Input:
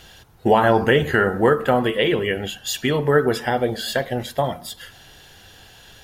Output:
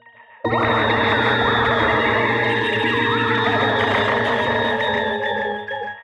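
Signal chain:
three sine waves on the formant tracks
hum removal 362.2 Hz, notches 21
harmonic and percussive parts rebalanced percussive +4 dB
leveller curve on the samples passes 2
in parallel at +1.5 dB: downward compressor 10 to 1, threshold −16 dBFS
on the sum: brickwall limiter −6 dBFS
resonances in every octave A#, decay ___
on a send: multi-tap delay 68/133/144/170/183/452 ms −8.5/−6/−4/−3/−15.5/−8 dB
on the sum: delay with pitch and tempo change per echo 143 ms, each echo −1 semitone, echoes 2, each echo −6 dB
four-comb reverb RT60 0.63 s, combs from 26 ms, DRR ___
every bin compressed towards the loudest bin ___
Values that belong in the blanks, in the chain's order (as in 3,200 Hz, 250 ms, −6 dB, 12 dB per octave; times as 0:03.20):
0.33 s, 16 dB, 10 to 1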